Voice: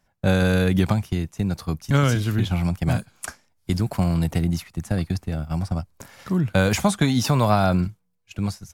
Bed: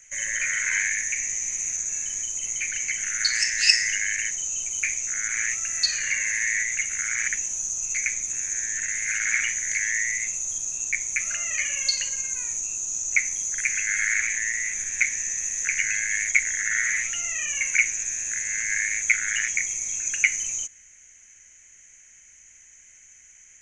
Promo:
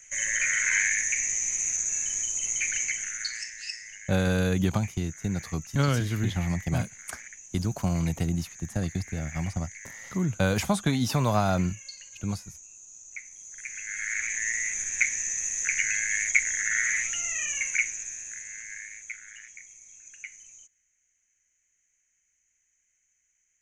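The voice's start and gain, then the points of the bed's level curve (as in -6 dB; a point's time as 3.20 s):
3.85 s, -5.5 dB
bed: 2.80 s 0 dB
3.70 s -19 dB
13.30 s -19 dB
14.50 s -2 dB
17.44 s -2 dB
19.42 s -21.5 dB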